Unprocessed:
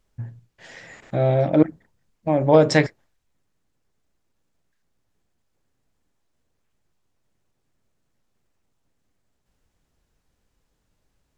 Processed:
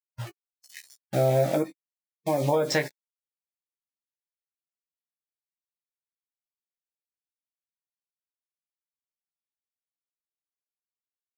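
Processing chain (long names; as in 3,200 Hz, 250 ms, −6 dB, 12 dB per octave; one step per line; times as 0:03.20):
bit-depth reduction 6 bits, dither none
low-shelf EQ 410 Hz −5.5 dB
downward compressor 16 to 1, threshold −20 dBFS, peak gain reduction 10 dB
noise reduction from a noise print of the clip's start 22 dB
double-tracking delay 15 ms −6 dB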